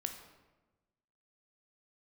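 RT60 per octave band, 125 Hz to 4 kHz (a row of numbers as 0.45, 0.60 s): 1.5, 1.4, 1.2, 1.1, 0.95, 0.75 s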